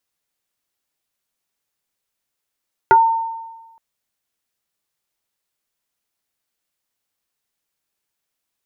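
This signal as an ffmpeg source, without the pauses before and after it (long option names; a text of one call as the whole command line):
ffmpeg -f lavfi -i "aevalsrc='0.531*pow(10,-3*t/1.23)*sin(2*PI*908*t+1.2*pow(10,-3*t/0.13)*sin(2*PI*0.57*908*t))':duration=0.87:sample_rate=44100" out.wav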